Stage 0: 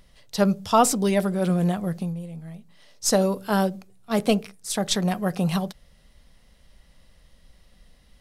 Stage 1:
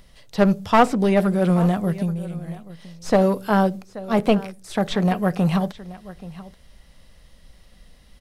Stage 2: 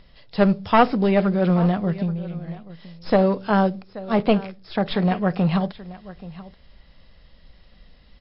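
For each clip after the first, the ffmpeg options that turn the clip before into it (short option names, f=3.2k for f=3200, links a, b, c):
-filter_complex "[0:a]acrossover=split=2900[a][b];[b]acompressor=threshold=-47dB:ratio=4:attack=1:release=60[c];[a][c]amix=inputs=2:normalize=0,aecho=1:1:830:0.126,aeval=exprs='clip(val(0),-1,0.1)':c=same,volume=4.5dB"
-ar 12000 -c:a libmp3lame -b:a 32k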